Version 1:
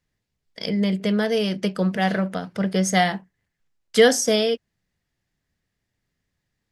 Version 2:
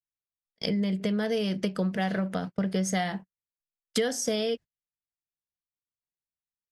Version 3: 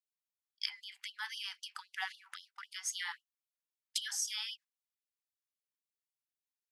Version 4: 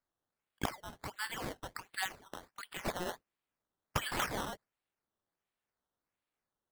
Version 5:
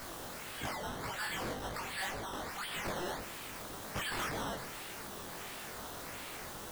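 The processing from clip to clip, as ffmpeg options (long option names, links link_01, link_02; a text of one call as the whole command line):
ffmpeg -i in.wav -af "agate=range=-35dB:threshold=-33dB:ratio=16:detection=peak,lowshelf=frequency=210:gain=4.5,acompressor=threshold=-25dB:ratio=6" out.wav
ffmpeg -i in.wav -af "afftfilt=real='re*gte(b*sr/1024,750*pow(2900/750,0.5+0.5*sin(2*PI*3.8*pts/sr)))':imag='im*gte(b*sr/1024,750*pow(2900/750,0.5+0.5*sin(2*PI*3.8*pts/sr)))':win_size=1024:overlap=0.75,volume=-3dB" out.wav
ffmpeg -i in.wav -af "acrusher=samples=13:mix=1:aa=0.000001:lfo=1:lforange=13:lforate=1.4,volume=2dB" out.wav
ffmpeg -i in.wav -af "aeval=exprs='val(0)+0.5*0.0266*sgn(val(0))':channel_layout=same,flanger=delay=18:depth=7.1:speed=1.8,asoftclip=type=hard:threshold=-31.5dB,volume=-1.5dB" out.wav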